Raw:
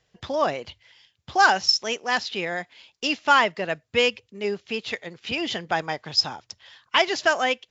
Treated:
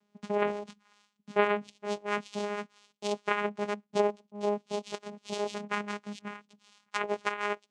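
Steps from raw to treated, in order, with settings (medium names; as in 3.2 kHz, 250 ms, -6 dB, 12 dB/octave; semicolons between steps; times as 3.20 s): pitch bend over the whole clip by +11 st starting unshifted; low-pass that closes with the level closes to 1 kHz, closed at -17 dBFS; vocoder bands 4, saw 206 Hz; trim -3.5 dB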